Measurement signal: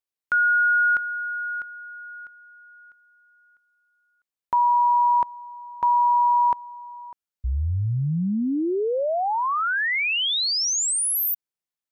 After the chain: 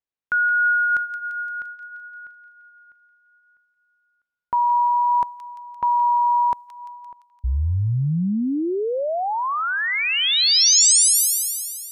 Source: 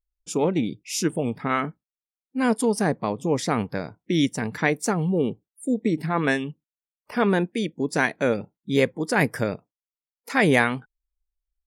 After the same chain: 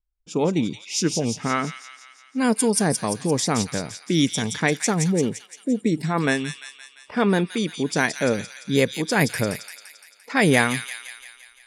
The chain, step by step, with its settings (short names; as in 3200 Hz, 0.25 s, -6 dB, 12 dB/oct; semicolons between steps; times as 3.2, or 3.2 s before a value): low-pass opened by the level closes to 2200 Hz, open at -18 dBFS; tone controls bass +3 dB, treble +10 dB; vibrato 0.61 Hz 7.1 cents; on a send: thin delay 0.172 s, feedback 59%, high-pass 2800 Hz, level -3.5 dB